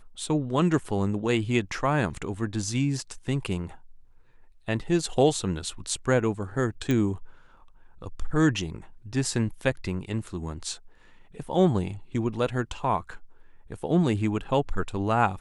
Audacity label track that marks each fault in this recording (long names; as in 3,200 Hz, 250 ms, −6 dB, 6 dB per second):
6.910000	6.910000	click −15 dBFS